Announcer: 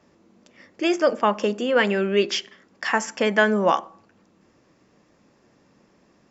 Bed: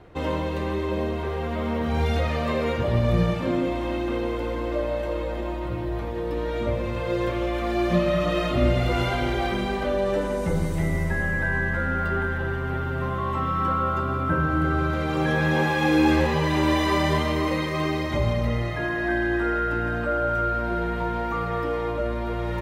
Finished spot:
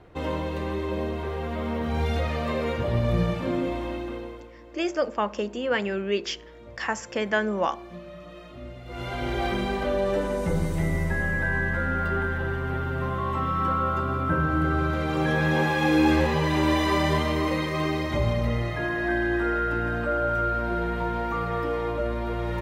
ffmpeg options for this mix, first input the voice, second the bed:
ffmpeg -i stem1.wav -i stem2.wav -filter_complex "[0:a]adelay=3950,volume=-6dB[link_01];[1:a]volume=16.5dB,afade=type=out:start_time=3.75:duration=0.75:silence=0.133352,afade=type=in:start_time=8.85:duration=0.62:silence=0.112202[link_02];[link_01][link_02]amix=inputs=2:normalize=0" out.wav

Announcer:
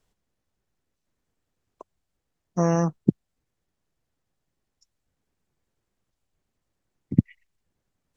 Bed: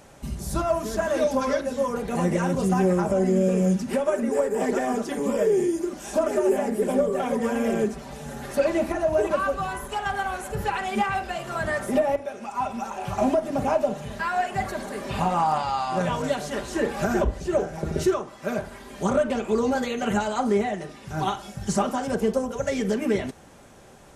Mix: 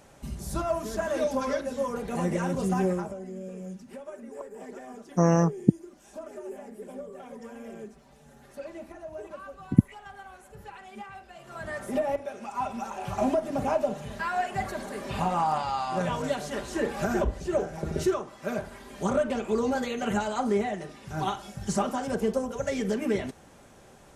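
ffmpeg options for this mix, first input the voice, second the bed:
ffmpeg -i stem1.wav -i stem2.wav -filter_complex "[0:a]adelay=2600,volume=0.5dB[link_01];[1:a]volume=10dB,afade=type=out:start_time=2.85:duration=0.32:silence=0.211349,afade=type=in:start_time=11.32:duration=0.95:silence=0.188365[link_02];[link_01][link_02]amix=inputs=2:normalize=0" out.wav

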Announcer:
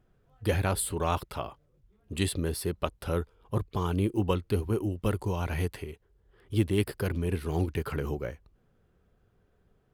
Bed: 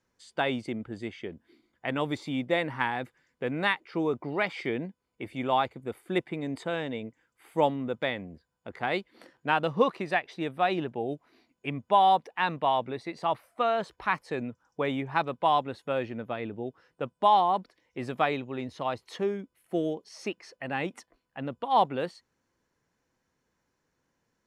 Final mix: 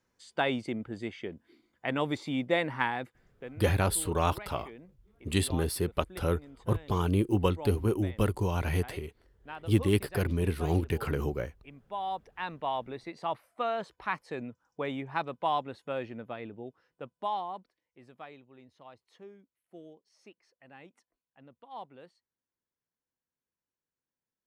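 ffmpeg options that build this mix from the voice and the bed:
ffmpeg -i stem1.wav -i stem2.wav -filter_complex "[0:a]adelay=3150,volume=1dB[link_01];[1:a]volume=12dB,afade=type=out:start_time=2.82:duration=0.76:silence=0.141254,afade=type=in:start_time=11.86:duration=1.11:silence=0.237137,afade=type=out:start_time=16.12:duration=1.88:silence=0.16788[link_02];[link_01][link_02]amix=inputs=2:normalize=0" out.wav

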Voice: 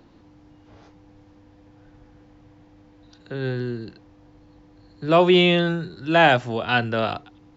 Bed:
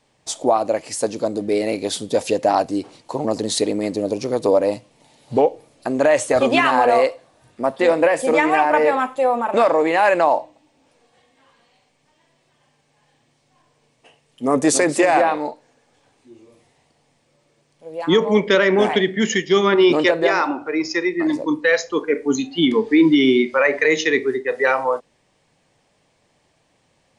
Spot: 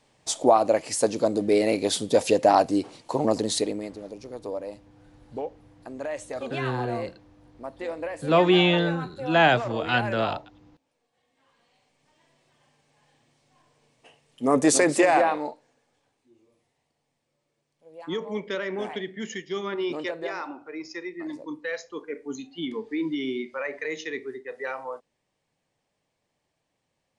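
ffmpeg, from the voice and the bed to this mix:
ffmpeg -i stem1.wav -i stem2.wav -filter_complex "[0:a]adelay=3200,volume=-3dB[link_01];[1:a]volume=13dB,afade=type=out:start_time=3.26:duration=0.69:silence=0.158489,afade=type=in:start_time=11.13:duration=1.11:silence=0.199526,afade=type=out:start_time=14.93:duration=1.28:silence=0.251189[link_02];[link_01][link_02]amix=inputs=2:normalize=0" out.wav

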